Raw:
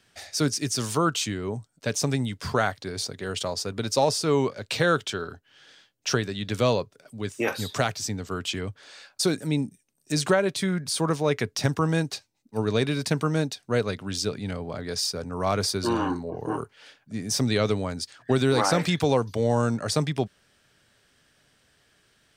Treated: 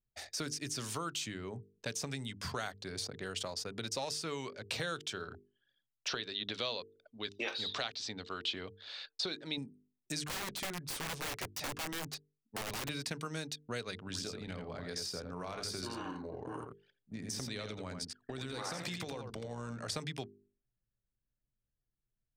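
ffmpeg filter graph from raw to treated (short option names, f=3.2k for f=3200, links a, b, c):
-filter_complex "[0:a]asettb=1/sr,asplit=3[a][b][c];[a]atrim=end=6.084[d];[b]atrim=start=6.08:end=9.58,asetpts=PTS-STARTPTS,afade=t=in:d=0.004:c=qsin,afade=t=out:st=3.496:d=0.004:c=qsin,lowpass=f=3.9k:t=q:w=3.4,equalizer=f=120:t=o:w=2:g=-12[e];[c]atrim=start=9.576[f];[d][e]acrossfade=d=0.004:c1=hsin:c2=qsin[g];[g][f]acrossfade=d=0.004:c1=qsin:c2=hsin,asettb=1/sr,asplit=3[h][i][j];[h]atrim=end=10.254[k];[i]atrim=start=10.25:end=12.89,asetpts=PTS-STARTPTS,afade=t=in:d=0.004:c=qsin,afade=t=out:st=2.636:d=0.004:c=qsin,flanger=delay=6.6:depth=2.6:regen=-22:speed=1.5:shape=sinusoidal,aeval=exprs='(mod(18.8*val(0)+1,2)-1)/18.8':c=same[l];[j]atrim=start=12.886[m];[k][l]acrossfade=d=0.004:c1=hsin:c2=qsin[n];[n][m]acrossfade=d=0.004:c1=qsin:c2=hsin,asettb=1/sr,asplit=3[o][p][q];[o]atrim=end=14.044[r];[p]atrim=start=14.04:end=19.9,asetpts=PTS-STARTPTS,afade=t=in:d=0.004:c=qsin,afade=t=out:st=5.856:d=0.004:c=qsin,acompressor=threshold=-26dB:ratio=6:attack=3.2:release=140:knee=1:detection=peak,tremolo=f=62:d=0.333,aecho=1:1:85:0.501,atrim=end_sample=258426[s];[q]atrim=start=19.896[t];[r][s]acrossfade=d=0.004:c1=hsin:c2=qsin[u];[u][t]acrossfade=d=0.004:c1=qsin:c2=hsin,anlmdn=0.1,bandreject=f=50:t=h:w=6,bandreject=f=100:t=h:w=6,bandreject=f=150:t=h:w=6,bandreject=f=200:t=h:w=6,bandreject=f=250:t=h:w=6,bandreject=f=300:t=h:w=6,bandreject=f=350:t=h:w=6,bandreject=f=400:t=h:w=6,bandreject=f=450:t=h:w=6,acrossover=split=1500|3000[v][w][x];[v]acompressor=threshold=-36dB:ratio=4[y];[w]acompressor=threshold=-40dB:ratio=4[z];[x]acompressor=threshold=-35dB:ratio=4[aa];[y][z][aa]amix=inputs=3:normalize=0,volume=-4.5dB"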